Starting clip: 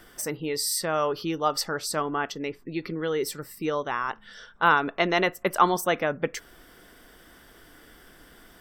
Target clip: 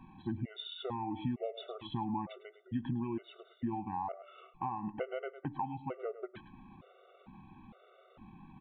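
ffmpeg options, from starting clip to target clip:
ffmpeg -i in.wav -filter_complex "[0:a]equalizer=frequency=125:width_type=o:width=1:gain=9,equalizer=frequency=250:width_type=o:width=1:gain=11,equalizer=frequency=1000:width_type=o:width=1:gain=11,equalizer=frequency=2000:width_type=o:width=1:gain=-5,asetrate=33038,aresample=44100,atempo=1.33484,bandreject=frequency=294.6:width_type=h:width=4,bandreject=frequency=589.2:width_type=h:width=4,bandreject=frequency=883.8:width_type=h:width=4,bandreject=frequency=1178.4:width_type=h:width=4,asplit=2[link_01][link_02];[link_02]aecho=0:1:105:0.15[link_03];[link_01][link_03]amix=inputs=2:normalize=0,acompressor=threshold=-24dB:ratio=20,aresample=8000,aresample=44100,areverse,acompressor=mode=upward:threshold=-44dB:ratio=2.5,areverse,afftfilt=real='re*gt(sin(2*PI*1.1*pts/sr)*(1-2*mod(floor(b*sr/1024/380),2)),0)':imag='im*gt(sin(2*PI*1.1*pts/sr)*(1-2*mod(floor(b*sr/1024/380),2)),0)':win_size=1024:overlap=0.75,volume=-6.5dB" out.wav

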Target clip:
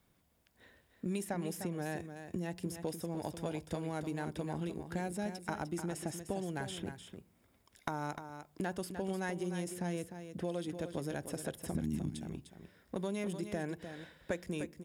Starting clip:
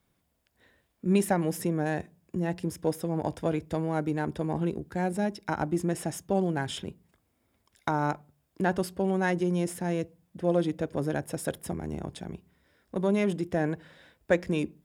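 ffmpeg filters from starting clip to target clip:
ffmpeg -i in.wav -filter_complex "[0:a]asettb=1/sr,asplit=3[link_01][link_02][link_03];[link_01]atrim=end=11.754[link_04];[link_02]atrim=start=11.75:end=12.16,asetpts=PTS-STARTPTS,afade=type=in:duration=0.004:curve=qsin,afade=type=out:start_time=0.406:duration=0.004:curve=qsin,lowshelf=frequency=370:width_type=q:width=3:gain=13[link_05];[link_03]atrim=start=12.156[link_06];[link_04][link_05]acrossfade=duration=0.004:curve1=hsin:curve2=qsin[link_07];[link_07][link_06]acrossfade=duration=0.004:curve1=qsin:curve2=hsin,acrossover=split=2500|7700[link_08][link_09][link_10];[link_08]acompressor=threshold=-38dB:ratio=4[link_11];[link_09]acompressor=threshold=-54dB:ratio=4[link_12];[link_10]acompressor=threshold=-51dB:ratio=4[link_13];[link_11][link_12][link_13]amix=inputs=3:normalize=0,aecho=1:1:302:0.355,volume=1dB" out.wav

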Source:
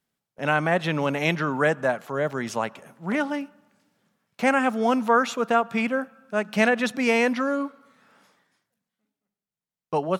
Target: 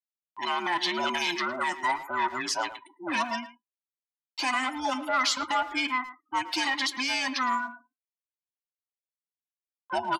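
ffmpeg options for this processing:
ffmpeg -i in.wav -filter_complex "[0:a]afftfilt=real='real(if(between(b,1,1008),(2*floor((b-1)/24)+1)*24-b,b),0)':imag='imag(if(between(b,1,1008),(2*floor((b-1)/24)+1)*24-b,b),0)*if(between(b,1,1008),-1,1)':win_size=2048:overlap=0.75,aemphasis=mode=production:type=75fm,afftfilt=real='re*gte(hypot(re,im),0.0178)':imag='im*gte(hypot(re,im),0.0178)':win_size=1024:overlap=0.75,equalizer=frequency=4600:width_type=o:width=0.57:gain=11.5,acompressor=mode=upward:threshold=-32dB:ratio=2.5,alimiter=limit=-13dB:level=0:latency=1:release=61,acontrast=37,flanger=delay=4.5:depth=1.9:regen=-80:speed=0.84:shape=sinusoidal,tremolo=f=0.91:d=0.29,asoftclip=type=tanh:threshold=-16.5dB,highpass=380,lowpass=7000,asplit=2[link_01][link_02];[link_02]adelay=110,highpass=300,lowpass=3400,asoftclip=type=hard:threshold=-23dB,volume=-13dB[link_03];[link_01][link_03]amix=inputs=2:normalize=0" out.wav

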